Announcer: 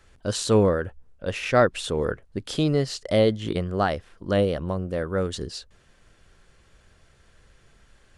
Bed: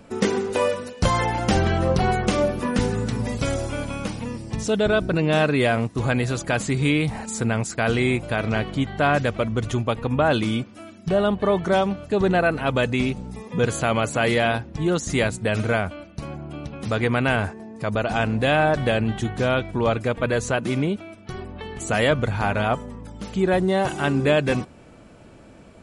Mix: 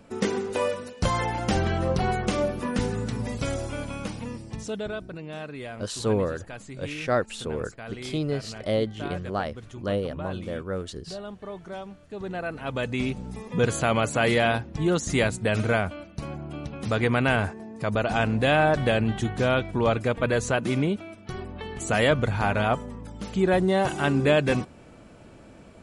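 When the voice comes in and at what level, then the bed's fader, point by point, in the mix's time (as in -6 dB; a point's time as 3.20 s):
5.55 s, -5.5 dB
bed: 4.34 s -4.5 dB
5.22 s -17.5 dB
12.00 s -17.5 dB
13.29 s -1.5 dB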